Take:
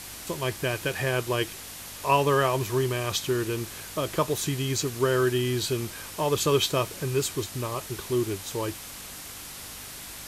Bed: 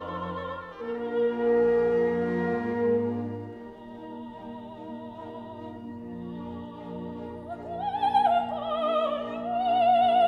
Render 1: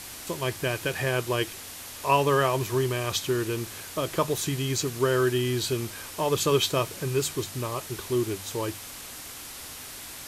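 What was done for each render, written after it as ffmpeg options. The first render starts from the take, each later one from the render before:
ffmpeg -i in.wav -af "bandreject=frequency=50:width_type=h:width=4,bandreject=frequency=100:width_type=h:width=4,bandreject=frequency=150:width_type=h:width=4,bandreject=frequency=200:width_type=h:width=4" out.wav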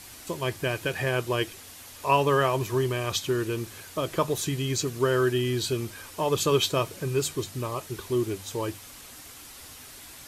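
ffmpeg -i in.wav -af "afftdn=noise_reduction=6:noise_floor=-41" out.wav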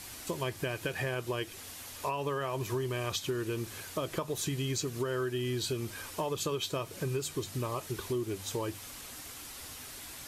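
ffmpeg -i in.wav -af "alimiter=limit=-16.5dB:level=0:latency=1:release=268,acompressor=threshold=-31dB:ratio=4" out.wav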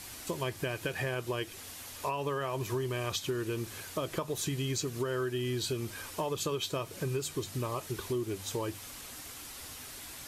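ffmpeg -i in.wav -af anull out.wav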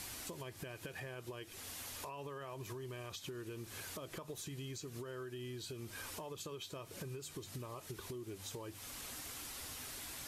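ffmpeg -i in.wav -af "alimiter=level_in=7dB:limit=-24dB:level=0:latency=1:release=400,volume=-7dB,acompressor=threshold=-43dB:ratio=6" out.wav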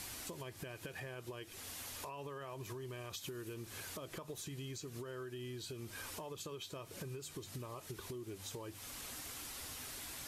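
ffmpeg -i in.wav -filter_complex "[0:a]asettb=1/sr,asplit=3[link_01][link_02][link_03];[link_01]atrim=end=3.134[link_04];[link_02]atrim=start=3.13:end=3.54,asetpts=PTS-STARTPTS,afade=type=in:duration=0.004:curve=qsin,afade=type=out:start_time=0.406:duration=0.004:curve=qsin,highshelf=frequency=9000:gain=8.5[link_05];[link_03]atrim=start=3.536[link_06];[link_04][link_05]acrossfade=duration=0.004:curve1=hsin:curve2=qsin[link_07];[link_07][link_06]acrossfade=duration=0.004:curve1=qsin:curve2=hsin" out.wav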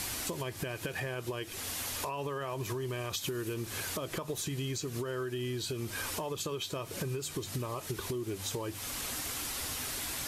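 ffmpeg -i in.wav -af "volume=10dB" out.wav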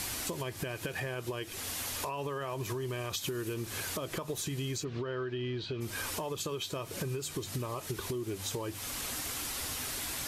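ffmpeg -i in.wav -filter_complex "[0:a]asplit=3[link_01][link_02][link_03];[link_01]afade=type=out:start_time=4.83:duration=0.02[link_04];[link_02]lowpass=frequency=4100:width=0.5412,lowpass=frequency=4100:width=1.3066,afade=type=in:start_time=4.83:duration=0.02,afade=type=out:start_time=5.8:duration=0.02[link_05];[link_03]afade=type=in:start_time=5.8:duration=0.02[link_06];[link_04][link_05][link_06]amix=inputs=3:normalize=0" out.wav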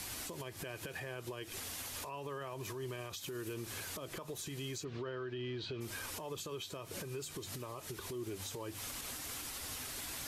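ffmpeg -i in.wav -filter_complex "[0:a]acrossover=split=300|3000[link_01][link_02][link_03];[link_01]acompressor=threshold=-40dB:ratio=6[link_04];[link_04][link_02][link_03]amix=inputs=3:normalize=0,alimiter=level_in=9.5dB:limit=-24dB:level=0:latency=1:release=278,volume=-9.5dB" out.wav

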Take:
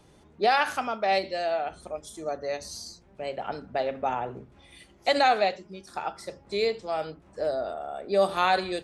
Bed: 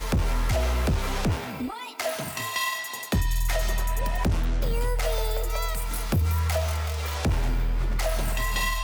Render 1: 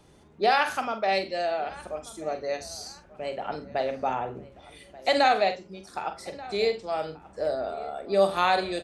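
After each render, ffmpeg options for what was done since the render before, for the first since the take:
ffmpeg -i in.wav -filter_complex "[0:a]asplit=2[link_01][link_02];[link_02]adelay=46,volume=-10dB[link_03];[link_01][link_03]amix=inputs=2:normalize=0,asplit=2[link_04][link_05];[link_05]adelay=1184,lowpass=frequency=2700:poles=1,volume=-19dB,asplit=2[link_06][link_07];[link_07]adelay=1184,lowpass=frequency=2700:poles=1,volume=0.34,asplit=2[link_08][link_09];[link_09]adelay=1184,lowpass=frequency=2700:poles=1,volume=0.34[link_10];[link_04][link_06][link_08][link_10]amix=inputs=4:normalize=0" out.wav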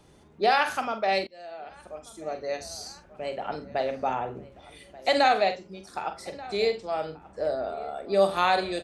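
ffmpeg -i in.wav -filter_complex "[0:a]asettb=1/sr,asplit=3[link_01][link_02][link_03];[link_01]atrim=end=6.874[link_04];[link_02]atrim=start=6.87:end=7.89,asetpts=PTS-STARTPTS,afade=type=in:duration=0.004:curve=qsin,afade=type=out:start_time=1.016:duration=0.004:curve=qsin,highshelf=frequency=4400:gain=-5[link_05];[link_03]atrim=start=7.886[link_06];[link_04][link_05]acrossfade=duration=0.004:curve1=hsin:curve2=qsin[link_07];[link_07][link_06]acrossfade=duration=0.004:curve1=qsin:curve2=hsin,asplit=2[link_08][link_09];[link_08]atrim=end=1.27,asetpts=PTS-STARTPTS,afade=type=out:start_time=1.266:duration=0.004:curve=hsin:silence=0.0707946[link_10];[link_09]atrim=start=1.27,asetpts=PTS-STARTPTS,afade=type=in:duration=1.4:silence=0.0707946[link_11];[link_10][link_11]concat=n=2:v=0:a=1" out.wav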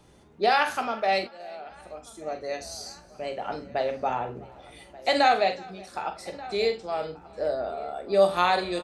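ffmpeg -i in.wav -filter_complex "[0:a]asplit=2[link_01][link_02];[link_02]adelay=17,volume=-10.5dB[link_03];[link_01][link_03]amix=inputs=2:normalize=0,aecho=1:1:371|742:0.0668|0.0254" out.wav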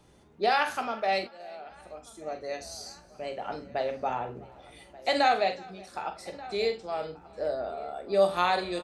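ffmpeg -i in.wav -af "volume=-3dB" out.wav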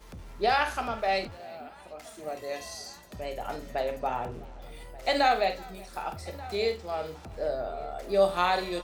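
ffmpeg -i in.wav -i bed.wav -filter_complex "[1:a]volume=-21dB[link_01];[0:a][link_01]amix=inputs=2:normalize=0" out.wav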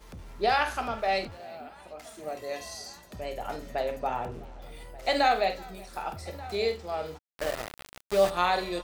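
ffmpeg -i in.wav -filter_complex "[0:a]asplit=3[link_01][link_02][link_03];[link_01]afade=type=out:start_time=7.17:duration=0.02[link_04];[link_02]aeval=exprs='val(0)*gte(abs(val(0)),0.0376)':channel_layout=same,afade=type=in:start_time=7.17:duration=0.02,afade=type=out:start_time=8.29:duration=0.02[link_05];[link_03]afade=type=in:start_time=8.29:duration=0.02[link_06];[link_04][link_05][link_06]amix=inputs=3:normalize=0" out.wav

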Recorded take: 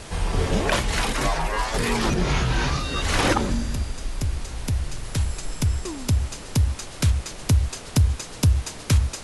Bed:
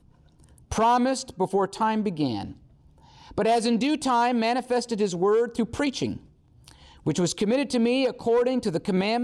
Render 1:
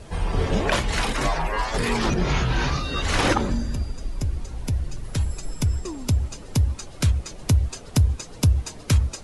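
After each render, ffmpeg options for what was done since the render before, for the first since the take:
ffmpeg -i in.wav -af "afftdn=noise_reduction=11:noise_floor=-38" out.wav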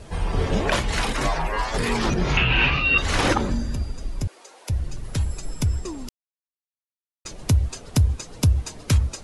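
ffmpeg -i in.wav -filter_complex "[0:a]asettb=1/sr,asplit=3[link_01][link_02][link_03];[link_01]atrim=end=2.374[link_04];[link_02]atrim=start=2.37:end=2.98,asetpts=PTS-STARTPTS,afade=type=in:duration=0.004:curve=qsin,afade=type=out:start_time=0.606:duration=0.004:curve=qsin,lowpass=frequency=2700:width_type=q:width=9.8[link_05];[link_03]atrim=start=2.976[link_06];[link_04][link_05]acrossfade=duration=0.004:curve1=hsin:curve2=qsin[link_07];[link_07][link_06]acrossfade=duration=0.004:curve1=qsin:curve2=hsin,asettb=1/sr,asplit=3[link_08][link_09][link_10];[link_08]atrim=end=4.274[link_11];[link_09]atrim=start=4.27:end=4.7,asetpts=PTS-STARTPTS,afade=type=in:duration=0.004:curve=qsin,afade=type=out:start_time=0.426:duration=0.004:curve=qsin,highpass=frequency=450:width=0.5412,highpass=frequency=450:width=1.3066[link_12];[link_10]atrim=start=4.696[link_13];[link_11][link_12]acrossfade=duration=0.004:curve1=hsin:curve2=qsin[link_14];[link_14][link_13]acrossfade=duration=0.004:curve1=qsin:curve2=hsin,asplit=3[link_15][link_16][link_17];[link_15]atrim=end=6.09,asetpts=PTS-STARTPTS,afade=type=out:start_time=6.086:duration=0.004:curve=hsin[link_18];[link_16]atrim=start=6.09:end=7.25,asetpts=PTS-STARTPTS,volume=0[link_19];[link_17]atrim=start=7.25,asetpts=PTS-STARTPTS,afade=type=in:duration=0.004:curve=hsin[link_20];[link_18][link_19][link_20]concat=n=3:v=0:a=1" out.wav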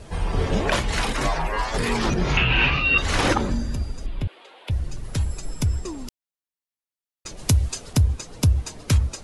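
ffmpeg -i in.wav -filter_complex "[0:a]asettb=1/sr,asplit=3[link_01][link_02][link_03];[link_01]atrim=end=4.064[link_04];[link_02]atrim=start=4.06:end=4.71,asetpts=PTS-STARTPTS,afade=type=in:duration=0.004:curve=qsin,afade=type=out:start_time=0.646:duration=0.004:curve=qsin,highshelf=frequency=4500:width_type=q:width=3:gain=-11[link_05];[link_03]atrim=start=4.706[link_06];[link_04][link_05]acrossfade=duration=0.004:curve1=hsin:curve2=qsin[link_07];[link_07][link_06]acrossfade=duration=0.004:curve1=qsin:curve2=hsin,asettb=1/sr,asplit=3[link_08][link_09][link_10];[link_08]atrim=end=7.374[link_11];[link_09]atrim=start=7.37:end=7.93,asetpts=PTS-STARTPTS,afade=type=in:duration=0.004:curve=qsin,afade=type=out:start_time=0.556:duration=0.004:curve=qsin,highshelf=frequency=2800:gain=7[link_12];[link_10]atrim=start=7.926[link_13];[link_11][link_12]acrossfade=duration=0.004:curve1=hsin:curve2=qsin[link_14];[link_14][link_13]acrossfade=duration=0.004:curve1=qsin:curve2=hsin" out.wav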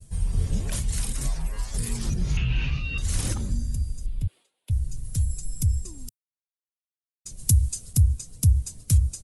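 ffmpeg -i in.wav -af "agate=range=-33dB:threshold=-37dB:ratio=3:detection=peak,firequalizer=gain_entry='entry(100,0);entry(320,-16);entry(840,-22);entry(8700,6)':delay=0.05:min_phase=1" out.wav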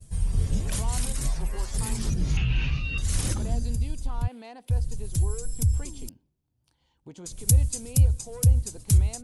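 ffmpeg -i in.wav -i bed.wav -filter_complex "[1:a]volume=-20dB[link_01];[0:a][link_01]amix=inputs=2:normalize=0" out.wav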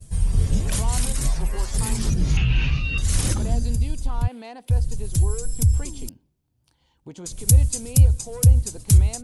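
ffmpeg -i in.wav -af "volume=5dB,alimiter=limit=-2dB:level=0:latency=1" out.wav

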